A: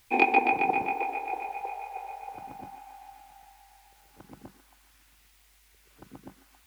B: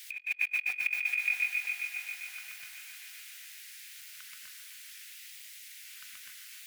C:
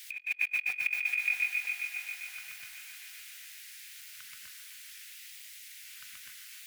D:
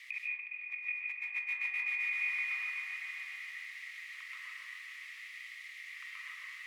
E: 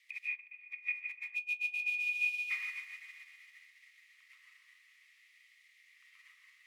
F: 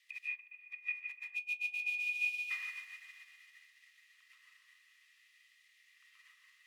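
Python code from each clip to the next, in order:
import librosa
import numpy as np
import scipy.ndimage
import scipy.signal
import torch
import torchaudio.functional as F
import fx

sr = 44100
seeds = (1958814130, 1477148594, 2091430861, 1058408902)

y1 = scipy.signal.sosfilt(scipy.signal.cheby2(4, 40, 900.0, 'highpass', fs=sr, output='sos'), x)
y1 = fx.over_compress(y1, sr, threshold_db=-41.0, ratio=-0.5)
y1 = y1 * 10.0 ** (8.0 / 20.0)
y2 = fx.low_shelf(y1, sr, hz=140.0, db=9.0)
y3 = fx.over_compress(y2, sr, threshold_db=-39.0, ratio=-0.5)
y3 = fx.double_bandpass(y3, sr, hz=1500.0, octaves=0.79)
y3 = fx.rev_freeverb(y3, sr, rt60_s=0.93, hf_ratio=0.3, predelay_ms=105, drr_db=-3.0)
y3 = y3 * 10.0 ** (5.5 / 20.0)
y4 = fx.high_shelf(y3, sr, hz=2200.0, db=10.0)
y4 = fx.spec_erase(y4, sr, start_s=1.35, length_s=1.15, low_hz=800.0, high_hz=2400.0)
y4 = fx.upward_expand(y4, sr, threshold_db=-42.0, expansion=2.5)
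y5 = fx.notch(y4, sr, hz=2200.0, q=5.8)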